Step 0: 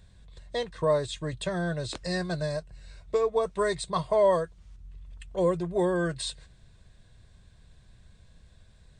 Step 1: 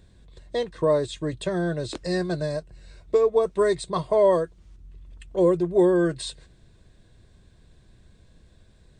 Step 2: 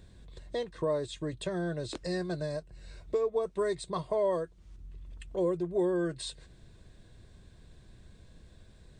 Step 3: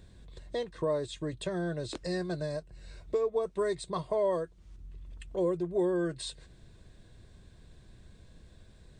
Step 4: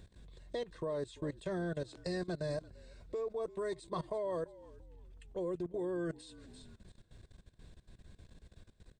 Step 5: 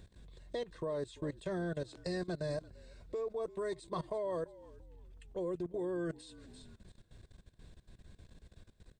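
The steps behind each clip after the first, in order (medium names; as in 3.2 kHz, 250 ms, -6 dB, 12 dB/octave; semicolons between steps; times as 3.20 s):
peaking EQ 330 Hz +10 dB 1.1 oct
compression 1.5:1, threshold -44 dBFS, peak gain reduction 10.5 dB
no audible change
frequency-shifting echo 340 ms, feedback 30%, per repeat -56 Hz, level -18 dB; level held to a coarse grid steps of 18 dB
hard clipper -27.5 dBFS, distortion -48 dB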